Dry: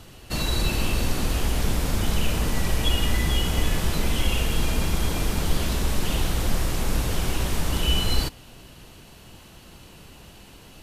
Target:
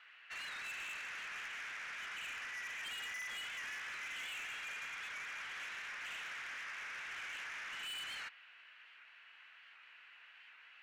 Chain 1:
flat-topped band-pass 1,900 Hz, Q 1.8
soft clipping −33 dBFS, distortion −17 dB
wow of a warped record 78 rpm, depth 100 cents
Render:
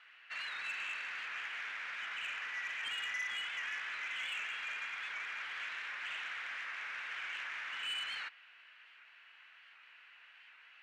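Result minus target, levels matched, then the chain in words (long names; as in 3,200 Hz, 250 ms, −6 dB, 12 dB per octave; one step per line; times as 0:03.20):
soft clipping: distortion −8 dB
flat-topped band-pass 1,900 Hz, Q 1.8
soft clipping −41.5 dBFS, distortion −9 dB
wow of a warped record 78 rpm, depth 100 cents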